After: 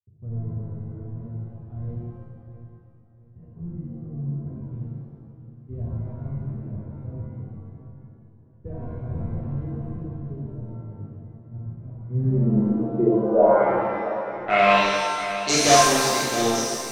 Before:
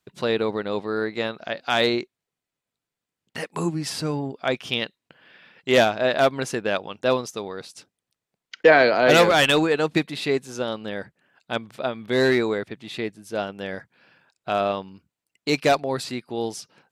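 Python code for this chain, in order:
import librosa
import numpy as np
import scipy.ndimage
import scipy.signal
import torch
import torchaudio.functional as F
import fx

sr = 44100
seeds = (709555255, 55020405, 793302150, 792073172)

p1 = scipy.signal.sosfilt(scipy.signal.butter(2, 61.0, 'highpass', fs=sr, output='sos'), x)
p2 = (np.mod(10.0 ** (14.5 / 20.0) * p1 + 1.0, 2.0) - 1.0) / 10.0 ** (14.5 / 20.0)
p3 = p1 + (p2 * librosa.db_to_amplitude(-5.5))
p4 = fx.power_curve(p3, sr, exponent=1.4)
p5 = fx.filter_sweep_lowpass(p4, sr, from_hz=100.0, to_hz=6100.0, start_s=11.91, end_s=15.44, q=5.6)
p6 = p5 + fx.echo_feedback(p5, sr, ms=669, feedback_pct=31, wet_db=-12.0, dry=0)
p7 = fx.rev_shimmer(p6, sr, seeds[0], rt60_s=1.5, semitones=7, shimmer_db=-8, drr_db=-7.0)
y = p7 * librosa.db_to_amplitude(-2.5)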